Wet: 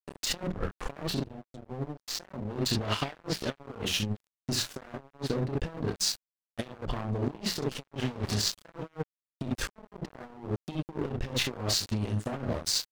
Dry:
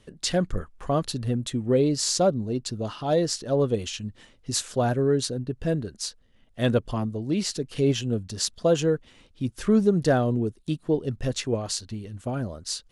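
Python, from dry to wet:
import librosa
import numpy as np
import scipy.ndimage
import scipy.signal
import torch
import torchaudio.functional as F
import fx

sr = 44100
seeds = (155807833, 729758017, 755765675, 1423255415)

y = fx.delta_mod(x, sr, bps=64000, step_db=-31.5, at=(7.92, 8.34))
y = fx.hum_notches(y, sr, base_hz=60, count=3)
y = fx.env_lowpass_down(y, sr, base_hz=690.0, full_db=-17.0)
y = fx.tone_stack(y, sr, knobs='10-0-1', at=(1.17, 2.08))
y = fx.spec_erase(y, sr, start_s=10.35, length_s=0.68, low_hz=440.0, high_hz=1600.0)
y = fx.room_early_taps(y, sr, ms=(29, 46, 67), db=(-3.0, -16.5, -6.5))
y = fx.over_compress(y, sr, threshold_db=-31.0, ratio=-1.0)
y = np.sign(y) * np.maximum(np.abs(y) - 10.0 ** (-33.5 / 20.0), 0.0)
y = fx.dynamic_eq(y, sr, hz=2700.0, q=0.87, threshold_db=-49.0, ratio=4.0, max_db=6, at=(2.7, 3.55))
y = y * 10.0 ** (1.5 / 20.0)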